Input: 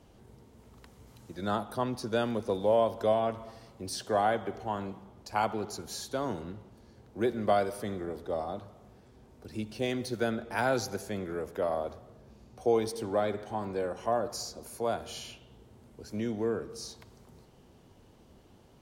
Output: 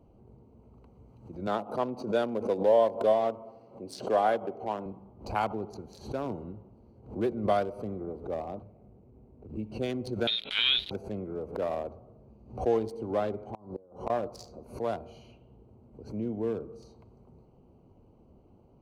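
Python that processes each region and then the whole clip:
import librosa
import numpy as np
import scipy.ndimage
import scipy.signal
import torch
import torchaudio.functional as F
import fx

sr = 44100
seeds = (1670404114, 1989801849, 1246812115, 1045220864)

y = fx.chain(x, sr, fx.bessel_highpass(hz=210.0, order=2),
    fx.peak_eq(hz=550.0, db=4.0, octaves=0.88), at=(1.47, 4.86))
y = fx.chain(y, sr, fx.median_filter(points=41),
    fx.band_squash(depth_pct=40), at=(8.62, 9.57))
y = fx.chain(y, sr, fx.leveller(passes=1),
    fx.freq_invert(carrier_hz=3900), at=(10.27, 10.91))
y = fx.chain(y, sr, fx.band_shelf(hz=2100.0, db=-11.0, octaves=1.1),
    fx.notch(hz=2500.0, q=8.3),
    fx.gate_flip(shuts_db=-24.0, range_db=-24), at=(13.54, 14.1))
y = fx.wiener(y, sr, points=25)
y = fx.pre_swell(y, sr, db_per_s=140.0)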